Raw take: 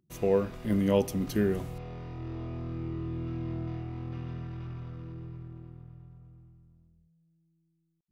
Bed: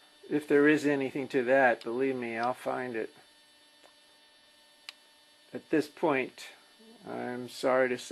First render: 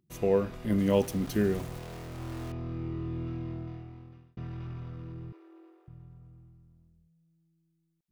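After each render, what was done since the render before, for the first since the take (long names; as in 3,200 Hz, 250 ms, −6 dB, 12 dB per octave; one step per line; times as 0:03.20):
0:00.78–0:02.52: centre clipping without the shift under −40.5 dBFS
0:03.22–0:04.37: fade out
0:05.32–0:05.88: Butterworth high-pass 300 Hz 96 dB per octave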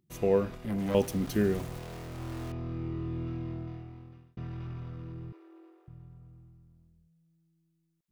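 0:00.55–0:00.95: tube saturation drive 27 dB, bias 0.55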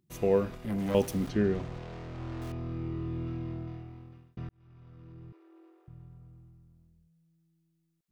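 0:01.29–0:02.42: high-frequency loss of the air 140 metres
0:04.49–0:05.99: fade in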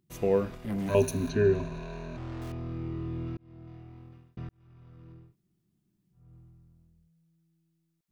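0:00.88–0:02.17: EQ curve with evenly spaced ripples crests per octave 1.5, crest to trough 15 dB
0:03.37–0:04.07: fade in
0:05.24–0:06.23: fill with room tone, crossfade 0.24 s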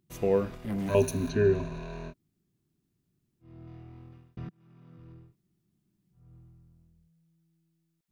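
0:02.11–0:03.42: fill with room tone, crossfade 0.06 s
0:04.45–0:04.98: low shelf with overshoot 120 Hz −12 dB, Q 3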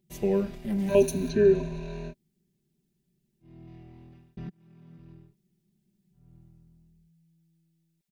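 parametric band 1,200 Hz −11.5 dB 0.62 octaves
comb filter 5.1 ms, depth 77%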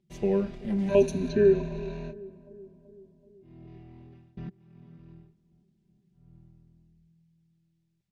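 high-frequency loss of the air 83 metres
feedback echo with a low-pass in the loop 380 ms, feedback 63%, low-pass 1,100 Hz, level −18.5 dB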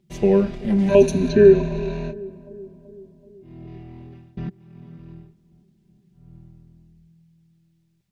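level +9 dB
brickwall limiter −2 dBFS, peak gain reduction 2.5 dB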